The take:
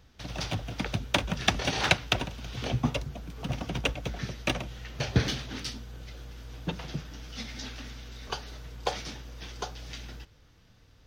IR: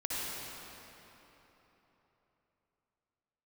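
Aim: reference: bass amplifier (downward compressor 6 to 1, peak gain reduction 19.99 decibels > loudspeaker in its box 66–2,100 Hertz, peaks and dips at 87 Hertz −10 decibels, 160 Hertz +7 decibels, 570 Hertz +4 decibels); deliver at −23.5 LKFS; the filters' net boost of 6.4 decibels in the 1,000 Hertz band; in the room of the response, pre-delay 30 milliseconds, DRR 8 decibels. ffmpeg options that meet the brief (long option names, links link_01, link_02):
-filter_complex "[0:a]equalizer=frequency=1000:width_type=o:gain=8,asplit=2[link_01][link_02];[1:a]atrim=start_sample=2205,adelay=30[link_03];[link_02][link_03]afir=irnorm=-1:irlink=0,volume=-13.5dB[link_04];[link_01][link_04]amix=inputs=2:normalize=0,acompressor=threshold=-36dB:ratio=6,highpass=frequency=66:width=0.5412,highpass=frequency=66:width=1.3066,equalizer=frequency=87:width_type=q:width=4:gain=-10,equalizer=frequency=160:width_type=q:width=4:gain=7,equalizer=frequency=570:width_type=q:width=4:gain=4,lowpass=frequency=2100:width=0.5412,lowpass=frequency=2100:width=1.3066,volume=18dB"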